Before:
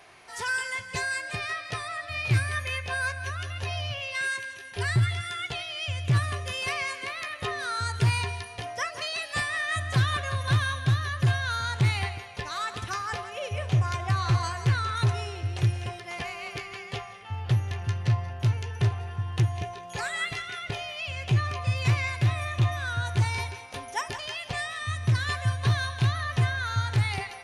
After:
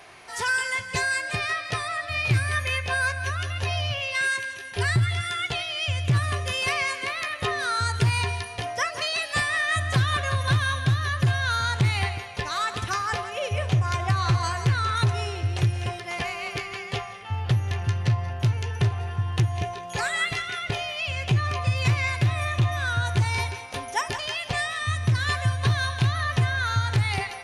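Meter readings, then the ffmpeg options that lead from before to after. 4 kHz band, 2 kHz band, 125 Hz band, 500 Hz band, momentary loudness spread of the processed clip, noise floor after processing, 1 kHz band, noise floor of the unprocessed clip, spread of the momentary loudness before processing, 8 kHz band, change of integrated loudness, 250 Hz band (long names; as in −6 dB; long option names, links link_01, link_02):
+4.5 dB, +4.5 dB, +2.0 dB, +4.5 dB, 6 LU, −38 dBFS, +4.0 dB, −43 dBFS, 8 LU, +4.5 dB, +3.0 dB, +3.0 dB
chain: -af "acompressor=threshold=-24dB:ratio=3,volume=5dB"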